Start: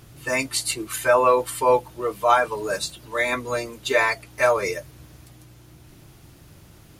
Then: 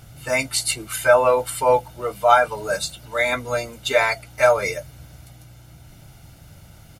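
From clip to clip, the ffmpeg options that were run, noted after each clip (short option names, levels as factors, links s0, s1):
-af "aecho=1:1:1.4:0.56,volume=1.12"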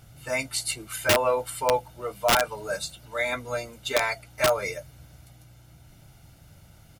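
-af "aeval=exprs='(mod(2.11*val(0)+1,2)-1)/2.11':c=same,volume=0.473"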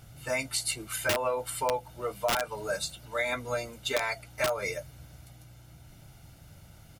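-af "acompressor=threshold=0.0501:ratio=4"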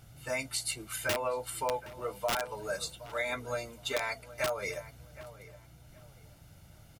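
-filter_complex "[0:a]asplit=2[s0][s1];[s1]adelay=769,lowpass=f=2300:p=1,volume=0.168,asplit=2[s2][s3];[s3]adelay=769,lowpass=f=2300:p=1,volume=0.27,asplit=2[s4][s5];[s5]adelay=769,lowpass=f=2300:p=1,volume=0.27[s6];[s0][s2][s4][s6]amix=inputs=4:normalize=0,volume=0.668"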